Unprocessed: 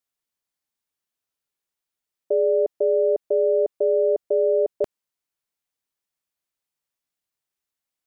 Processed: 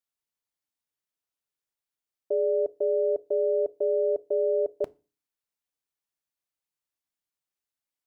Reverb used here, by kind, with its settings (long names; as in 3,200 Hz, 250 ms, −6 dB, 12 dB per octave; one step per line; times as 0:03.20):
feedback delay network reverb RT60 0.32 s, low-frequency decay 1.35×, high-frequency decay 0.95×, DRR 16.5 dB
level −5.5 dB